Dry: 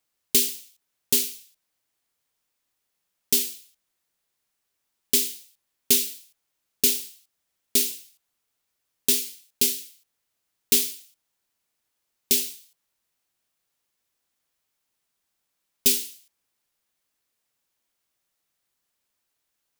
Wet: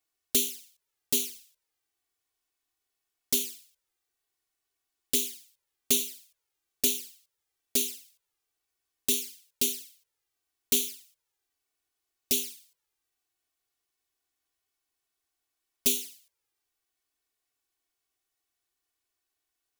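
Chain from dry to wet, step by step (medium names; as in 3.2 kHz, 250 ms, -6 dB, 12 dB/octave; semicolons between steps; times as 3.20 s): touch-sensitive flanger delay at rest 2.7 ms, full sweep at -19 dBFS; trim -2 dB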